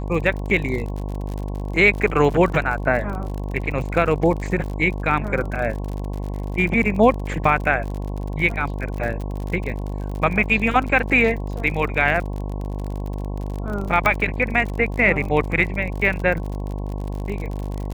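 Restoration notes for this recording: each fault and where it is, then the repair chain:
buzz 50 Hz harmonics 22 -27 dBFS
crackle 55 per s -28 dBFS
14.06 s: pop -6 dBFS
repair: de-click; de-hum 50 Hz, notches 22

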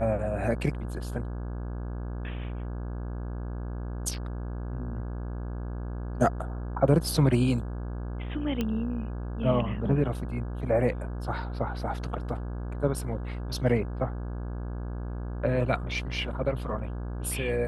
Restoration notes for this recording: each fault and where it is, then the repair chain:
buzz 60 Hz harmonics 28 -34 dBFS
8.61 s: pop -16 dBFS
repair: de-click; de-hum 60 Hz, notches 28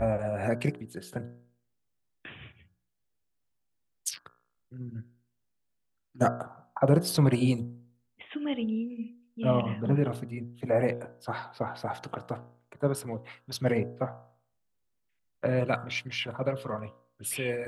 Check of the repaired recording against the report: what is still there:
nothing left

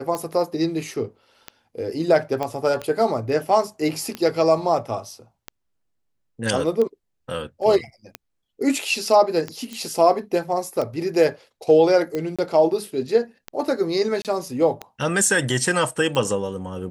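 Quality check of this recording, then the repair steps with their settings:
tick 45 rpm -14 dBFS
2.43 s: pop -13 dBFS
9.73 s: pop -19 dBFS
12.36–12.39 s: dropout 26 ms
14.22–14.25 s: dropout 28 ms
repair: de-click; interpolate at 12.36 s, 26 ms; interpolate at 14.22 s, 28 ms

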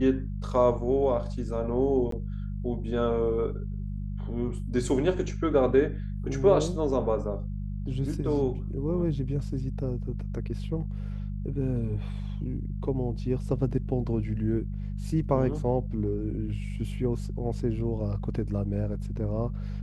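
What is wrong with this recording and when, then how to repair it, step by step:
hum 50 Hz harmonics 4 -33 dBFS
2.11–2.12 s: dropout 13 ms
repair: de-hum 50 Hz, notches 4; interpolate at 2.11 s, 13 ms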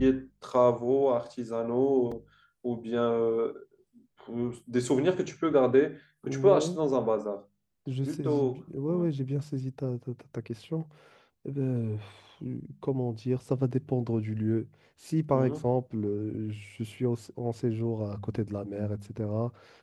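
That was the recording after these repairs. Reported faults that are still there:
nothing left

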